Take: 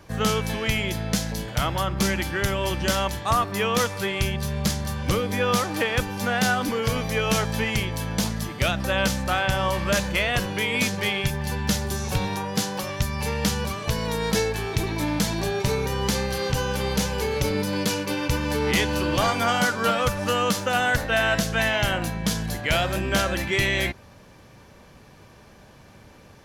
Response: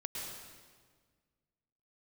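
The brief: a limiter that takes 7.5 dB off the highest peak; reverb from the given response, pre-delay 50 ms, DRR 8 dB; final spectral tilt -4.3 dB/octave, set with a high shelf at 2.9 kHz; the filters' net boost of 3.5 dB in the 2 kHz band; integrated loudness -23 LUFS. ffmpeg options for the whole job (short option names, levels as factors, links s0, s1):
-filter_complex "[0:a]equalizer=f=2000:t=o:g=3,highshelf=f=2900:g=4,alimiter=limit=0.168:level=0:latency=1,asplit=2[s0][s1];[1:a]atrim=start_sample=2205,adelay=50[s2];[s1][s2]afir=irnorm=-1:irlink=0,volume=0.355[s3];[s0][s3]amix=inputs=2:normalize=0,volume=1.19"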